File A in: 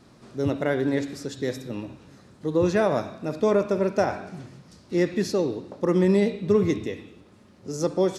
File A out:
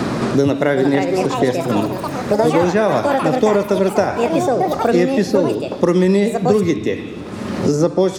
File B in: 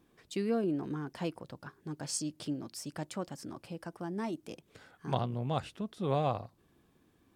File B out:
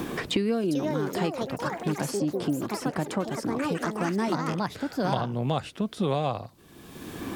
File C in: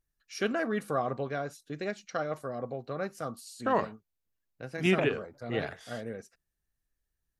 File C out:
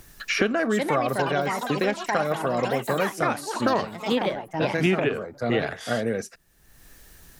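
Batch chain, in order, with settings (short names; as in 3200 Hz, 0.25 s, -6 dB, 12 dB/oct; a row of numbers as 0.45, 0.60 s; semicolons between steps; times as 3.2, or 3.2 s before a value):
echoes that change speed 0.479 s, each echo +5 st, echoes 3, each echo -6 dB; three-band squash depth 100%; gain +7 dB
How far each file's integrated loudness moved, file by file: +8.5, +8.0, +8.0 LU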